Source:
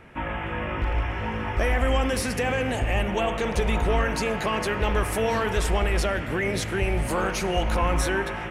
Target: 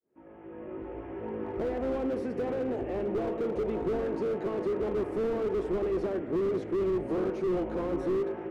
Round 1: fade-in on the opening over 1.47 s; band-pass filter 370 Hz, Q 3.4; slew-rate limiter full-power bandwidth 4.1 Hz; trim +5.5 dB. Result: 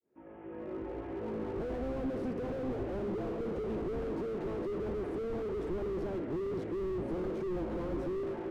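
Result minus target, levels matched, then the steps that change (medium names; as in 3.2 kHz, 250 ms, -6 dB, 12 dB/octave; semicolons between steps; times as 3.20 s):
slew-rate limiter: distortion +9 dB
change: slew-rate limiter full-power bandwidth 10 Hz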